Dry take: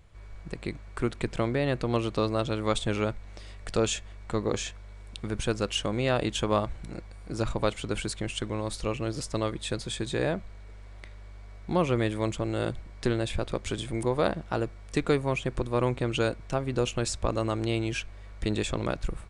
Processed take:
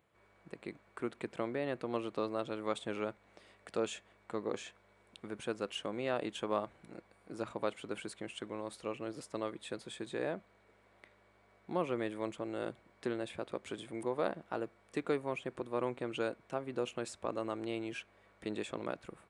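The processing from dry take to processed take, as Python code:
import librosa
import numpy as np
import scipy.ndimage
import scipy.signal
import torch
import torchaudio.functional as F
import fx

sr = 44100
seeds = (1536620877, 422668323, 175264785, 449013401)

y = scipy.signal.sosfilt(scipy.signal.butter(2, 240.0, 'highpass', fs=sr, output='sos'), x)
y = fx.peak_eq(y, sr, hz=5700.0, db=-9.5, octaves=1.5)
y = y * 10.0 ** (-7.5 / 20.0)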